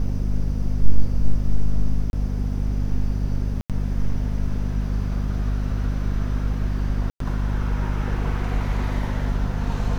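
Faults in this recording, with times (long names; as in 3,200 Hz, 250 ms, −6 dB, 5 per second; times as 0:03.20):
mains hum 50 Hz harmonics 5 −24 dBFS
0:02.10–0:02.13: drop-out 31 ms
0:03.61–0:03.70: drop-out 87 ms
0:07.10–0:07.20: drop-out 103 ms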